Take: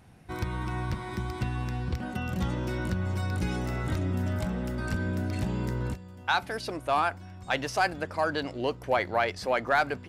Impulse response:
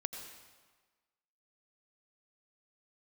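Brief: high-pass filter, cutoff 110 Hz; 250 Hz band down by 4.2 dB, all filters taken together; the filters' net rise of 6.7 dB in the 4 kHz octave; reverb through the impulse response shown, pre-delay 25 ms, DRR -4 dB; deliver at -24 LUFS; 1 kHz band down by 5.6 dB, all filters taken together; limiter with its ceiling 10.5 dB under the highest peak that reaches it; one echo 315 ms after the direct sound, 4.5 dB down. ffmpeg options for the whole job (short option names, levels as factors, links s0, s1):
-filter_complex "[0:a]highpass=110,equalizer=f=250:t=o:g=-5,equalizer=f=1000:t=o:g=-8.5,equalizer=f=4000:t=o:g=8.5,alimiter=limit=0.0794:level=0:latency=1,aecho=1:1:315:0.596,asplit=2[s0][s1];[1:a]atrim=start_sample=2205,adelay=25[s2];[s1][s2]afir=irnorm=-1:irlink=0,volume=1.58[s3];[s0][s3]amix=inputs=2:normalize=0,volume=1.68"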